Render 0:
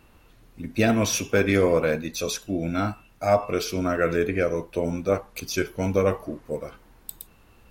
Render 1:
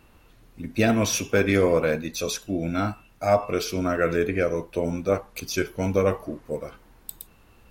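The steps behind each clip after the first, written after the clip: nothing audible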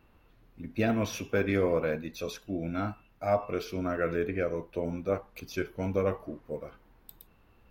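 bell 8300 Hz -13 dB 1.5 oct; gain -6.5 dB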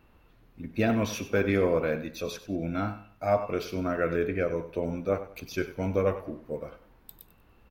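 feedback echo 96 ms, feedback 30%, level -14 dB; gain +2 dB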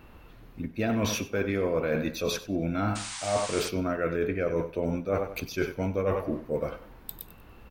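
reverse; compressor 6:1, threshold -34 dBFS, peak gain reduction 14.5 dB; reverse; painted sound noise, 2.95–3.69, 760–9600 Hz -47 dBFS; gain +9 dB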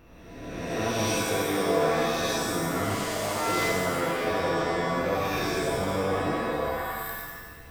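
spectral swells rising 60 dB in 1.52 s; shimmer reverb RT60 1.3 s, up +7 st, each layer -2 dB, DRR -1.5 dB; gain -8 dB

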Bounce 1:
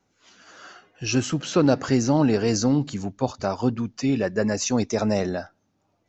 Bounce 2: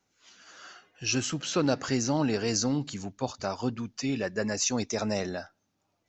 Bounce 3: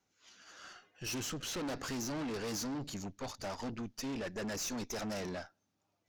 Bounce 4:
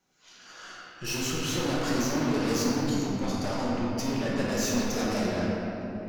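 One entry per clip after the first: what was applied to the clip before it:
tilt shelf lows -4 dB, about 1400 Hz; gain -4 dB
tube stage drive 36 dB, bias 0.75
reverb RT60 3.5 s, pre-delay 5 ms, DRR -6 dB; gain +3.5 dB

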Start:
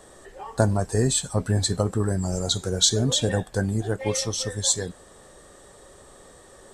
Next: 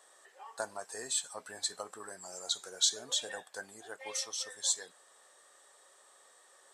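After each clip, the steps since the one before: HPF 860 Hz 12 dB/oct; gain -8.5 dB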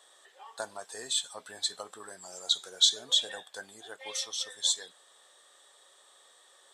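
bell 3500 Hz +11.5 dB 0.41 oct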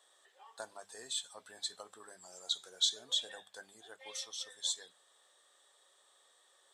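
notches 50/100/150/200 Hz; gain -8 dB

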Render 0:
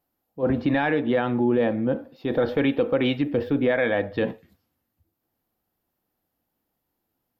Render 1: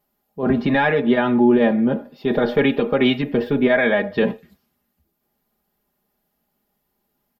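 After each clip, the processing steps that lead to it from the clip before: comb 4.9 ms, depth 85%; gain +4 dB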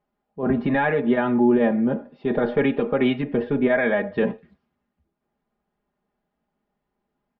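LPF 2300 Hz 12 dB/oct; gain -3 dB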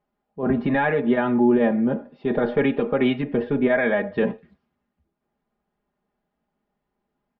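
nothing audible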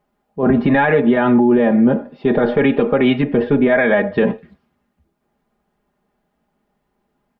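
maximiser +13.5 dB; gain -4.5 dB

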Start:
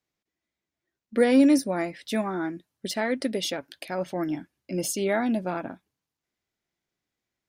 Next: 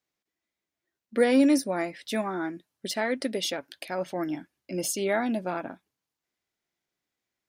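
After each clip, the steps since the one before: low shelf 200 Hz -7.5 dB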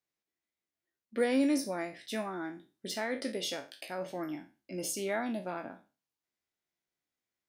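spectral trails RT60 0.32 s; gain -7.5 dB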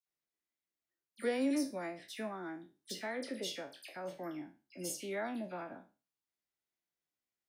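dispersion lows, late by 66 ms, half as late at 2300 Hz; gain -5 dB

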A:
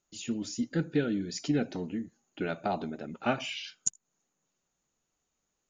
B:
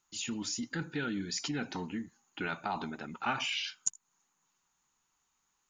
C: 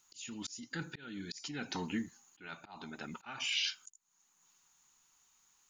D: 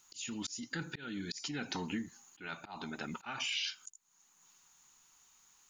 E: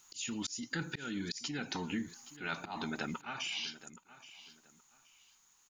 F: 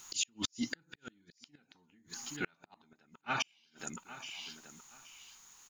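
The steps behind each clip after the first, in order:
resonant low shelf 750 Hz -6.5 dB, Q 3; in parallel at -2 dB: negative-ratio compressor -38 dBFS, ratio -0.5; on the sum: gain -2.5 dB
high shelf 2500 Hz +9 dB; auto swell 0.643 s; gain +1.5 dB
compressor 2.5:1, threshold -41 dBFS, peak gain reduction 8 dB; gain +4.5 dB
vocal rider within 4 dB 0.5 s; feedback echo 0.823 s, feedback 25%, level -16.5 dB; gain +1 dB
in parallel at -10 dB: soft clip -35 dBFS, distortion -12 dB; on the sum: flipped gate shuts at -28 dBFS, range -39 dB; gain +7 dB

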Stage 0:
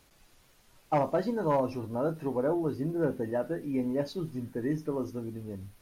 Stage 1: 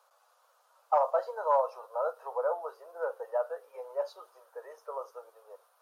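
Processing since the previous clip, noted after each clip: steep high-pass 490 Hz 72 dB/oct; resonant high shelf 1600 Hz -8 dB, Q 3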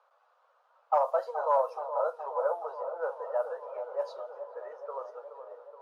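low-pass opened by the level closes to 2500 Hz, open at -24 dBFS; dark delay 0.423 s, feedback 70%, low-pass 1200 Hz, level -9 dB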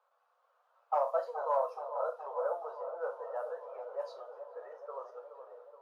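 AGC gain up to 3 dB; reverb, pre-delay 3 ms, DRR 5 dB; gain -8.5 dB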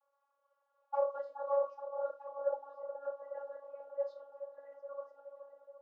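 vocoder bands 32, saw 280 Hz; gain -1.5 dB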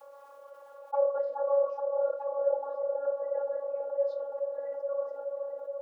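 bell 470 Hz +13 dB 1.1 oct; fast leveller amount 50%; gain -5.5 dB

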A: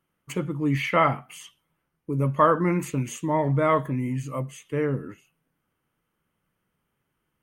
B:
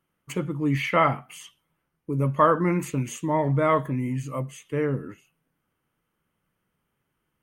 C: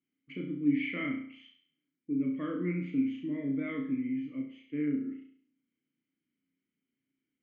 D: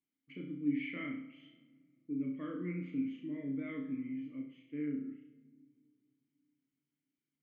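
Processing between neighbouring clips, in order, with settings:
nothing audible
vowel filter i; air absorption 300 m; flutter echo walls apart 5.8 m, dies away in 0.54 s; gain +2.5 dB
shoebox room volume 3700 m³, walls mixed, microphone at 0.39 m; gain -7 dB

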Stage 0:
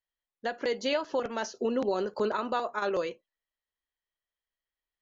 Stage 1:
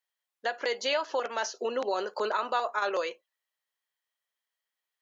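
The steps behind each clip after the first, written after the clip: HPF 610 Hz 12 dB/oct; in parallel at -2.5 dB: limiter -26 dBFS, peak gain reduction 7.5 dB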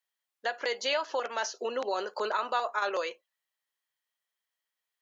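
low shelf 390 Hz -5 dB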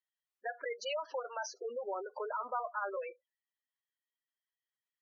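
added harmonics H 6 -45 dB, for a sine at -16.5 dBFS; spectral gate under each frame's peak -10 dB strong; gain -6 dB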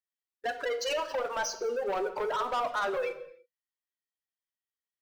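sample leveller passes 3; on a send at -8.5 dB: reverb, pre-delay 3 ms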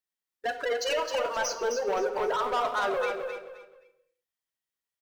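feedback echo 0.262 s, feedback 27%, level -6 dB; gain +2 dB

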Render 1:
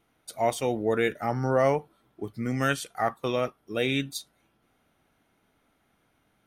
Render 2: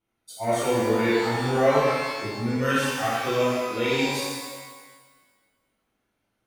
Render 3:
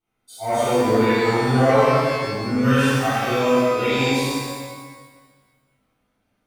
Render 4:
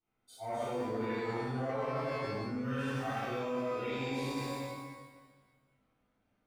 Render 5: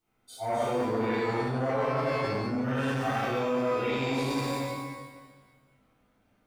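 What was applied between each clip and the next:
spectral noise reduction 11 dB; shimmer reverb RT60 1.4 s, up +12 st, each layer -8 dB, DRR -10 dB; gain -7 dB
shoebox room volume 460 m³, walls mixed, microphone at 3.7 m; gain -5.5 dB
reverse; compressor 6:1, threshold -27 dBFS, peak gain reduction 15 dB; reverse; high shelf 4100 Hz -9 dB; gain -6 dB
core saturation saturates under 550 Hz; gain +8.5 dB

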